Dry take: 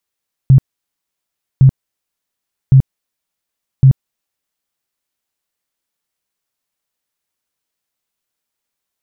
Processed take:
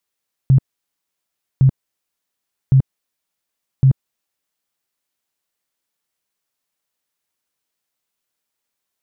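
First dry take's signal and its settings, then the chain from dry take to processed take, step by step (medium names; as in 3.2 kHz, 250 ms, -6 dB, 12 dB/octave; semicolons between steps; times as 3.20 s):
tone bursts 133 Hz, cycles 11, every 1.11 s, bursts 4, -2.5 dBFS
bass shelf 91 Hz -5.5 dB; peak limiter -7 dBFS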